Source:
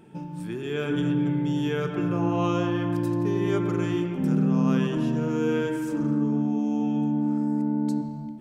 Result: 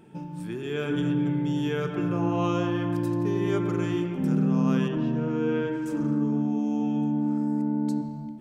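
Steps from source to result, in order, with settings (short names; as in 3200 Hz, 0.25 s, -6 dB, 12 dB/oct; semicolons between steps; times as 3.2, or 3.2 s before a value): 4.88–5.86 air absorption 180 m; gain -1 dB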